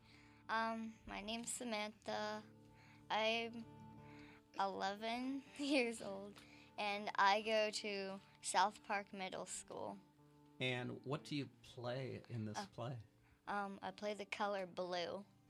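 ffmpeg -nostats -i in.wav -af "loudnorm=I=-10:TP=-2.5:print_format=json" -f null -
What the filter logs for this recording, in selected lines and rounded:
"input_i" : "-43.2",
"input_tp" : "-19.8",
"input_lra" : "6.5",
"input_thresh" : "-54.0",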